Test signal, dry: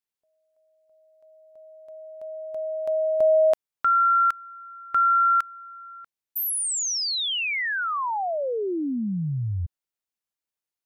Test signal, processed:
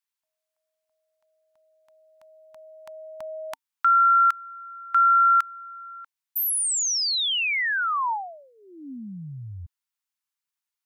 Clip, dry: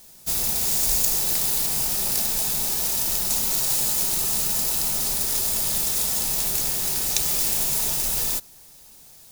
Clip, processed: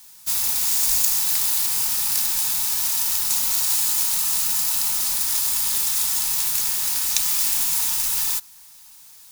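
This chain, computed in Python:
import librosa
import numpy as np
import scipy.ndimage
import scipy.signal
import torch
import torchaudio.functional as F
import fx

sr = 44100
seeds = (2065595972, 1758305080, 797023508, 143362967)

y = fx.curve_eq(x, sr, hz=(270.0, 480.0, 910.0), db=(0, -22, 12))
y = y * librosa.db_to_amplitude(-10.0)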